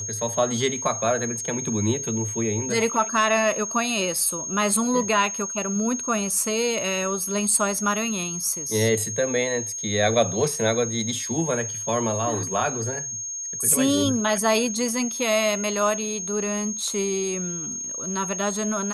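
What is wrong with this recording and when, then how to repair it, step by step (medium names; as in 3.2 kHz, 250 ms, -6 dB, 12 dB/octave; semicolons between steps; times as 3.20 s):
whine 6.5 kHz -29 dBFS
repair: band-stop 6.5 kHz, Q 30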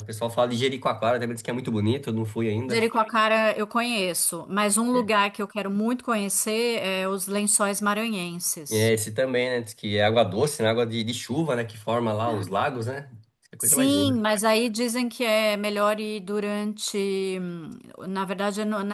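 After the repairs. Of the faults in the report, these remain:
nothing left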